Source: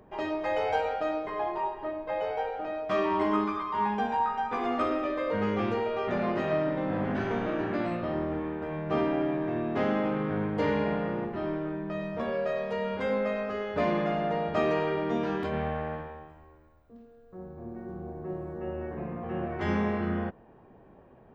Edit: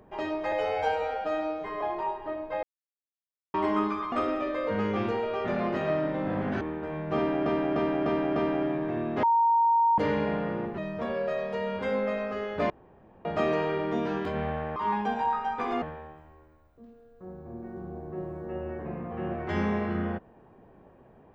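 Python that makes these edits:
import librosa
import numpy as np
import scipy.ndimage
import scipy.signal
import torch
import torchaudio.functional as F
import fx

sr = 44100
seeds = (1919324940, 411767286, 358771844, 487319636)

y = fx.edit(x, sr, fx.stretch_span(start_s=0.52, length_s=0.86, factor=1.5),
    fx.silence(start_s=2.2, length_s=0.91),
    fx.move(start_s=3.69, length_s=1.06, to_s=15.94),
    fx.cut(start_s=7.24, length_s=1.16),
    fx.repeat(start_s=8.95, length_s=0.3, count=5),
    fx.bleep(start_s=9.82, length_s=0.75, hz=927.0, db=-19.0),
    fx.cut(start_s=11.37, length_s=0.59),
    fx.room_tone_fill(start_s=13.88, length_s=0.55), tone=tone)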